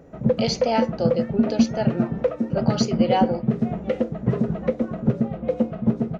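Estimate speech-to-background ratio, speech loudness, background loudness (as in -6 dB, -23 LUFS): -3.5 dB, -27.0 LUFS, -23.5 LUFS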